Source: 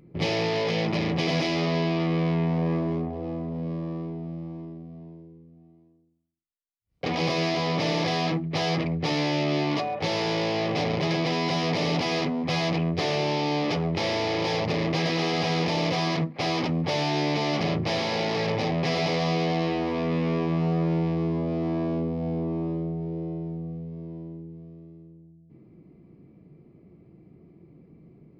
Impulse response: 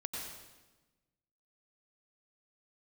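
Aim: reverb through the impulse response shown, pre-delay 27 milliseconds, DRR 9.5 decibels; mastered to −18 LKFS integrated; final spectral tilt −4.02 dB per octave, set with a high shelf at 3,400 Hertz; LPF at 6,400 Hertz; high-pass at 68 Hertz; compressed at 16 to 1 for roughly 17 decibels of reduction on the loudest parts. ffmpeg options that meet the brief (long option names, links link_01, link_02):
-filter_complex "[0:a]highpass=68,lowpass=6400,highshelf=frequency=3400:gain=9,acompressor=threshold=-38dB:ratio=16,asplit=2[link_01][link_02];[1:a]atrim=start_sample=2205,adelay=27[link_03];[link_02][link_03]afir=irnorm=-1:irlink=0,volume=-10dB[link_04];[link_01][link_04]amix=inputs=2:normalize=0,volume=23dB"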